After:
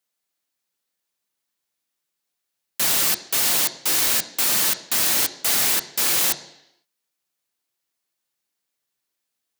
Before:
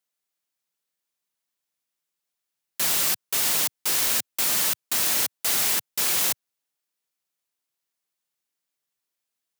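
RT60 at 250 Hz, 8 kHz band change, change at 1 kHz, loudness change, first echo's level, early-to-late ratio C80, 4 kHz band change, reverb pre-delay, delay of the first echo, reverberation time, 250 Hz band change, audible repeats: 0.85 s, +3.0 dB, +3.5 dB, +3.0 dB, none, 16.5 dB, +4.0 dB, 3 ms, none, 0.80 s, +5.0 dB, none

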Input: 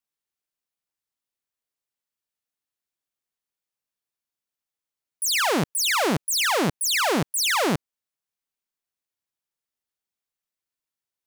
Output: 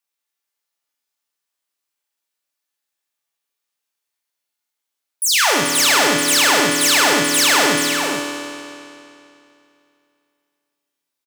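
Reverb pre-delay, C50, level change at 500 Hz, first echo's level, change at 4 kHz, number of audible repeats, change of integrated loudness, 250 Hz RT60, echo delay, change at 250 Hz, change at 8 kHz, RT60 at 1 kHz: 3 ms, 0.5 dB, +6.5 dB, -6.5 dB, +9.5 dB, 1, +8.0 dB, 2.7 s, 0.434 s, +6.0 dB, +9.5 dB, 2.7 s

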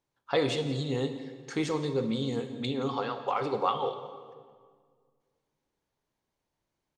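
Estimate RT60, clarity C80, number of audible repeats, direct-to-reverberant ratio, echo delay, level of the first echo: 1.8 s, 10.5 dB, 1, 8.5 dB, 0.17 s, -17.5 dB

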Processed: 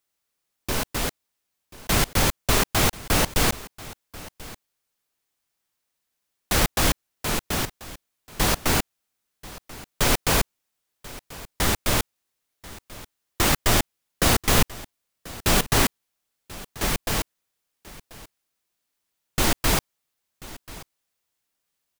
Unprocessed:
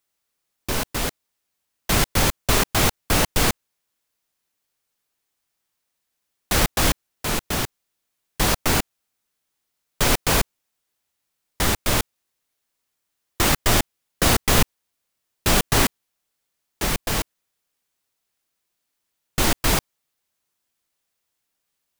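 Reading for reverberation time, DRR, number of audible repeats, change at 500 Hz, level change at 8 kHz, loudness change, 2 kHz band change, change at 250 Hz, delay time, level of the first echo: none, none, 1, -1.5 dB, -1.5 dB, -1.5 dB, -1.5 dB, -1.5 dB, 1.037 s, -19.0 dB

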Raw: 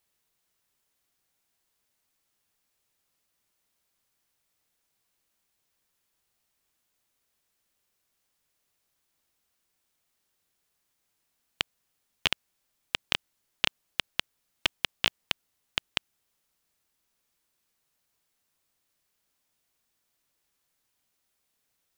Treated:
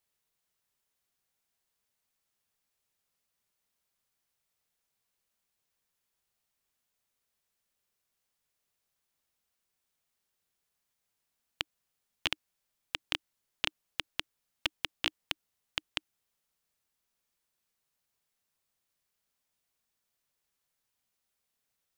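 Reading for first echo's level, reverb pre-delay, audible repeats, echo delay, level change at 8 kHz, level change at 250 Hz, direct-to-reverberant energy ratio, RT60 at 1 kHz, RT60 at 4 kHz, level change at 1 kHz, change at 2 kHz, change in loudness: none, none, none, none, -5.5 dB, -7.0 dB, none, none, none, -5.5 dB, -5.5 dB, -5.5 dB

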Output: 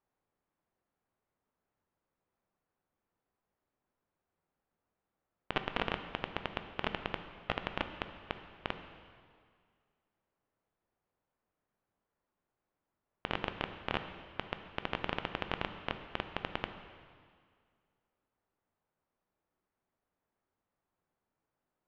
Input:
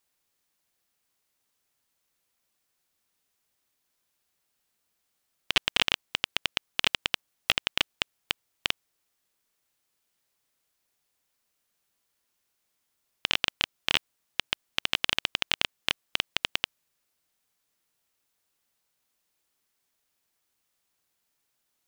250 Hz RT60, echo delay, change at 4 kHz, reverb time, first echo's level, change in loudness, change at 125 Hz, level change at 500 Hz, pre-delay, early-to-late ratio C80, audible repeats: 2.1 s, none, -17.0 dB, 2.0 s, none, -11.0 dB, +2.5 dB, +1.5 dB, 6 ms, 10.5 dB, none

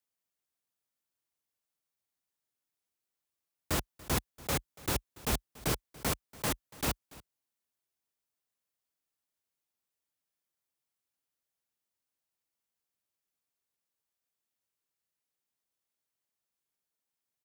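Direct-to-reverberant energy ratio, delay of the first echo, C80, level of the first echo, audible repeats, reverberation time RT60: none, 0.286 s, none, -21.0 dB, 1, none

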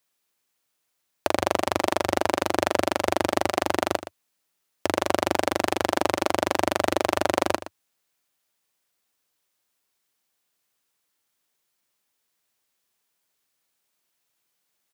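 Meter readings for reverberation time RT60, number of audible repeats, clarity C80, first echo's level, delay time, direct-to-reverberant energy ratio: none, 1, none, -13.5 dB, 0.119 s, none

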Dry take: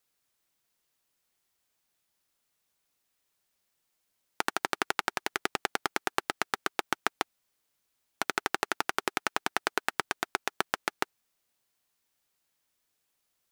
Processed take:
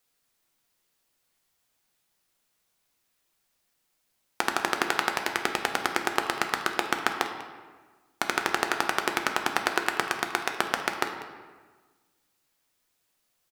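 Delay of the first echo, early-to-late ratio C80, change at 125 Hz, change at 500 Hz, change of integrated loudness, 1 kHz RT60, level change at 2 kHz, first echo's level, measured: 0.195 s, 8.0 dB, +5.0 dB, +4.5 dB, +4.5 dB, 1.4 s, +4.5 dB, -18.0 dB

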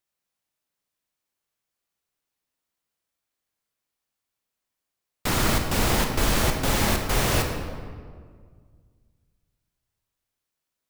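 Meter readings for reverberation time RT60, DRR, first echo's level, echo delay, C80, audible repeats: 1.9 s, 3.0 dB, none, none, 6.0 dB, none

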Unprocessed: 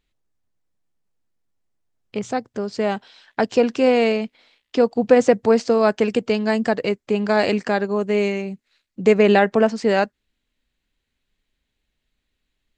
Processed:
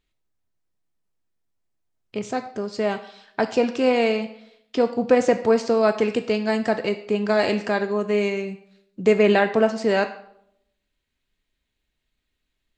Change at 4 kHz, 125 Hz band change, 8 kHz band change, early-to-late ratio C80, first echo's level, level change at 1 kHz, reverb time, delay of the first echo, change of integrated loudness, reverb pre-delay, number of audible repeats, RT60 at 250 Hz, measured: -1.5 dB, n/a, n/a, 15.0 dB, none, -2.5 dB, 0.75 s, none, -2.5 dB, 3 ms, none, 0.95 s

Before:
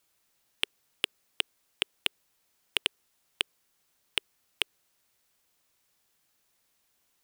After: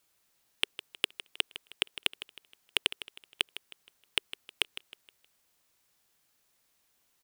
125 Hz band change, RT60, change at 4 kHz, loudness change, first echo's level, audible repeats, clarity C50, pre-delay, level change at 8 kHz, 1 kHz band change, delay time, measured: 0.0 dB, none, 0.0 dB, 0.0 dB, -14.0 dB, 3, none, none, 0.0 dB, 0.0 dB, 0.157 s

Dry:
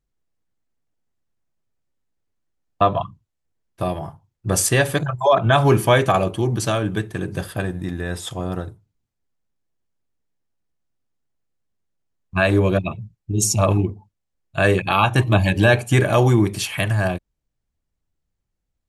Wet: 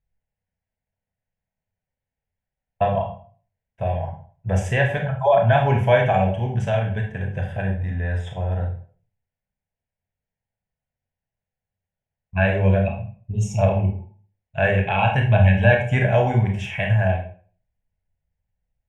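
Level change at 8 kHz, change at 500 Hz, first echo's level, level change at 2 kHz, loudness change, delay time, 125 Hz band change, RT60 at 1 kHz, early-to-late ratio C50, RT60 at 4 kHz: under -15 dB, -1.0 dB, none, -1.5 dB, -1.5 dB, none, +1.0 dB, 0.45 s, 7.0 dB, 0.35 s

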